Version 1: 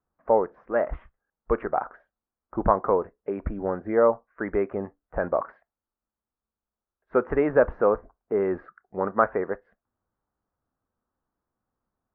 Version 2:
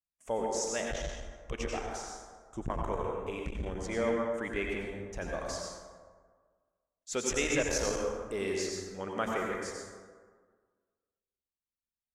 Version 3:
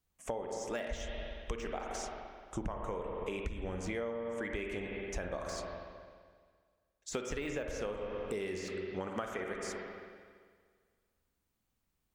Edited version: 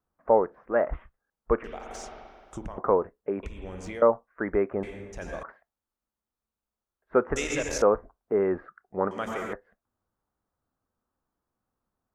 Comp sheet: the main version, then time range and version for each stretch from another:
1
0:01.64–0:02.78: punch in from 3
0:03.43–0:04.02: punch in from 3
0:04.83–0:05.43: punch in from 2
0:07.36–0:07.82: punch in from 2
0:09.11–0:09.53: punch in from 2

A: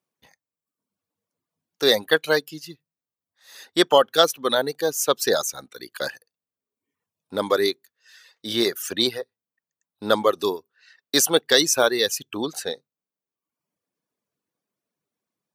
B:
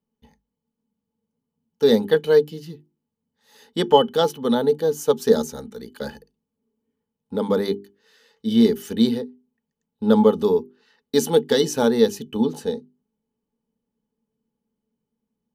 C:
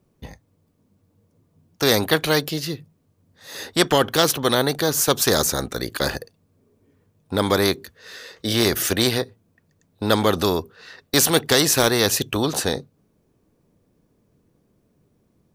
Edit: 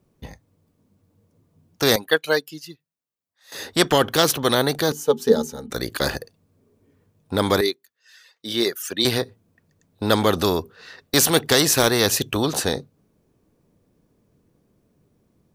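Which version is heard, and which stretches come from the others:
C
0:01.96–0:03.52: punch in from A
0:04.92–0:05.70: punch in from B
0:07.61–0:09.05: punch in from A

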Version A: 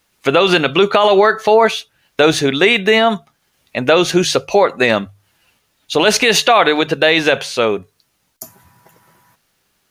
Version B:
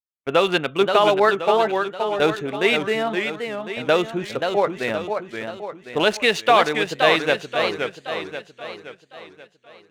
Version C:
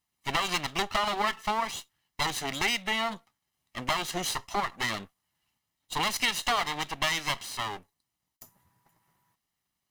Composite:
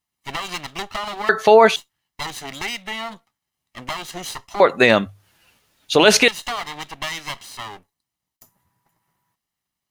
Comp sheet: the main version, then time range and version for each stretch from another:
C
0:01.29–0:01.76: punch in from A
0:04.60–0:06.28: punch in from A
not used: B

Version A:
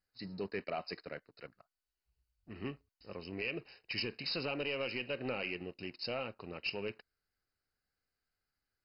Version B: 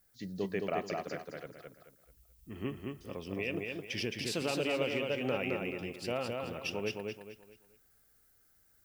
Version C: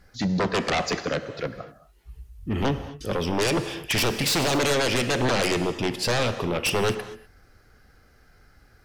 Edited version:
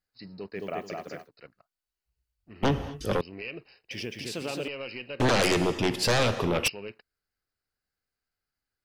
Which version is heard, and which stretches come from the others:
A
0:00.57–0:01.25: punch in from B, crossfade 0.10 s
0:02.63–0:03.21: punch in from C
0:03.91–0:04.68: punch in from B
0:05.20–0:06.68: punch in from C

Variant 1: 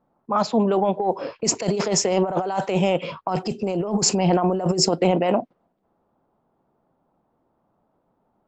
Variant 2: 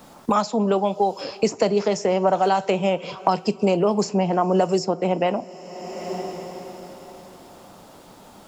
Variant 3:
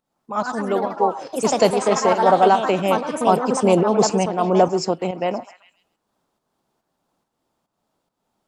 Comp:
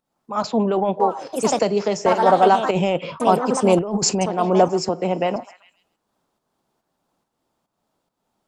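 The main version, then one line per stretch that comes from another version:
3
0:00.44–0:01.00: punch in from 1
0:01.59–0:02.06: punch in from 2
0:02.71–0:03.20: punch in from 1
0:03.79–0:04.21: punch in from 1
0:04.89–0:05.36: punch in from 2

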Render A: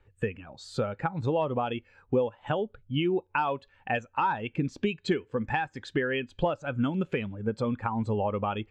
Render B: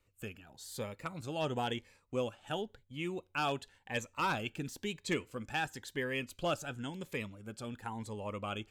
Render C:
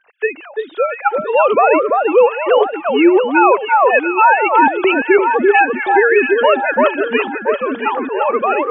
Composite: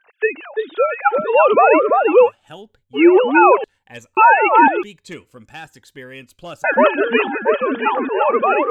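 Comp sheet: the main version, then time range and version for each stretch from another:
C
0:02.27–0:02.98: punch in from B, crossfade 0.10 s
0:03.64–0:04.17: punch in from B
0:04.83–0:06.64: punch in from B
not used: A

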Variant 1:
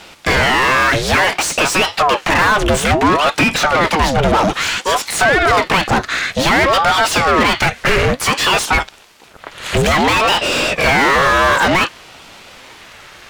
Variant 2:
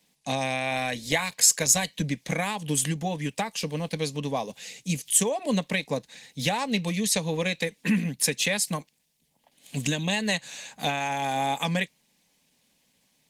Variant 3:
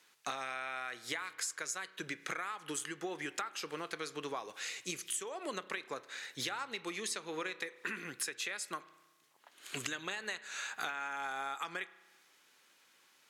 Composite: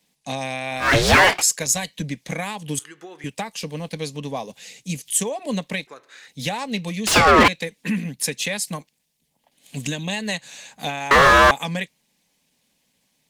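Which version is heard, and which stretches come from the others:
2
0:00.87–0:01.36: punch in from 1, crossfade 0.16 s
0:02.79–0:03.24: punch in from 3
0:05.87–0:06.28: punch in from 3
0:07.07–0:07.48: punch in from 1
0:11.11–0:11.51: punch in from 1

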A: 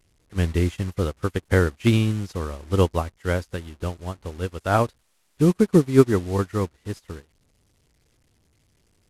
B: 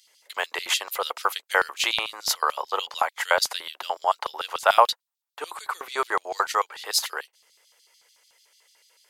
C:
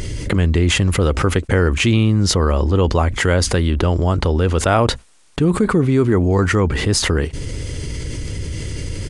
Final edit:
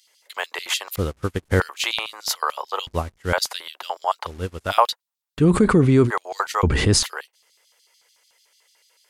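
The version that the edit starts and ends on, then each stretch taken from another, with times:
B
0:00.96–0:01.60: punch in from A
0:02.87–0:03.33: punch in from A
0:04.28–0:04.70: punch in from A, crossfade 0.06 s
0:05.40–0:06.08: punch in from C, crossfade 0.06 s
0:06.63–0:07.03: punch in from C

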